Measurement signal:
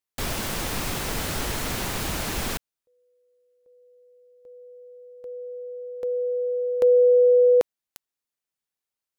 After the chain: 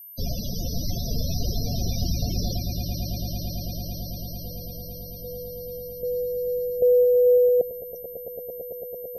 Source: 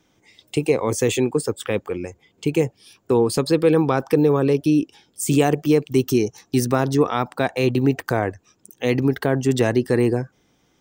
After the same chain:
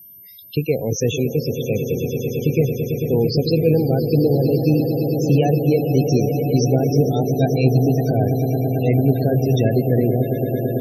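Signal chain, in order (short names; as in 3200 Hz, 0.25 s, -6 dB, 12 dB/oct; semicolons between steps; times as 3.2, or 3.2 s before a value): EQ curve 180 Hz 0 dB, 330 Hz -9 dB, 510 Hz -5 dB, 720 Hz -5 dB, 1100 Hz -26 dB, 1600 Hz -10 dB, 5900 Hz +4 dB, 10000 Hz -28 dB; swelling echo 0.111 s, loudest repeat 8, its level -11 dB; whine 13000 Hz -45 dBFS; loudest bins only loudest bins 32; gain +4.5 dB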